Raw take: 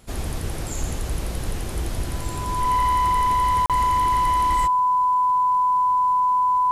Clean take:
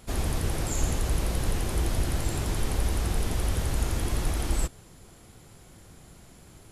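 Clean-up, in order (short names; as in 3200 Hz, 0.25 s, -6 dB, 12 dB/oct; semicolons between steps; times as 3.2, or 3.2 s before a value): clip repair -16 dBFS; notch 1000 Hz, Q 30; interpolate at 3.66, 37 ms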